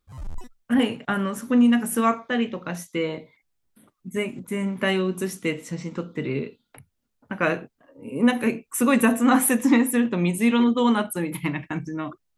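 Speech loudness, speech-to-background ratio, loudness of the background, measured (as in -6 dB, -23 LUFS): -23.5 LUFS, 19.5 dB, -43.0 LUFS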